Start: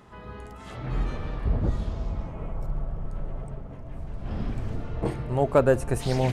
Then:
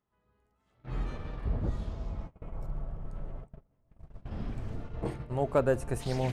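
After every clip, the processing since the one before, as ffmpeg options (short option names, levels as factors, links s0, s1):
-af "agate=range=0.0501:threshold=0.0282:ratio=16:detection=peak,volume=0.473"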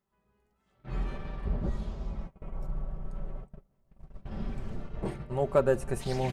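-af "aecho=1:1:5.2:0.49"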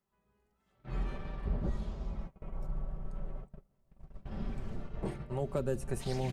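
-filter_complex "[0:a]acrossover=split=350|3000[s0][s1][s2];[s1]acompressor=threshold=0.0178:ratio=6[s3];[s0][s3][s2]amix=inputs=3:normalize=0,volume=0.75"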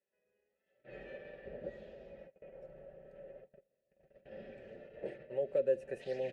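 -filter_complex "[0:a]asplit=3[s0][s1][s2];[s0]bandpass=f=530:t=q:w=8,volume=1[s3];[s1]bandpass=f=1840:t=q:w=8,volume=0.501[s4];[s2]bandpass=f=2480:t=q:w=8,volume=0.355[s5];[s3][s4][s5]amix=inputs=3:normalize=0,volume=2.66"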